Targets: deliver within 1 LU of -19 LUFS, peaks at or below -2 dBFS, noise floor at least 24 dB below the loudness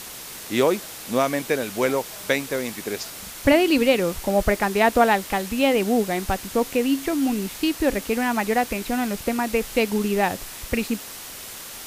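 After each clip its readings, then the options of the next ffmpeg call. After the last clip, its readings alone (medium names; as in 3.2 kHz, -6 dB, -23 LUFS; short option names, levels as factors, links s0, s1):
noise floor -38 dBFS; noise floor target -47 dBFS; loudness -22.5 LUFS; peak level -3.5 dBFS; loudness target -19.0 LUFS
-> -af "afftdn=nr=9:nf=-38"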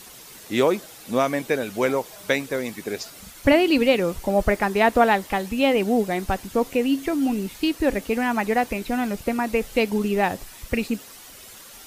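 noise floor -44 dBFS; noise floor target -47 dBFS
-> -af "afftdn=nr=6:nf=-44"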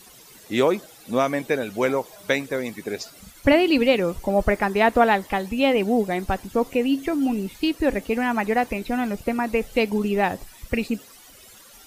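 noise floor -48 dBFS; loudness -23.0 LUFS; peak level -4.0 dBFS; loudness target -19.0 LUFS
-> -af "volume=1.58,alimiter=limit=0.794:level=0:latency=1"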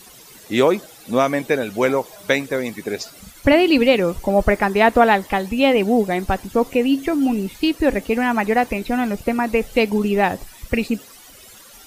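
loudness -19.0 LUFS; peak level -2.0 dBFS; noise floor -44 dBFS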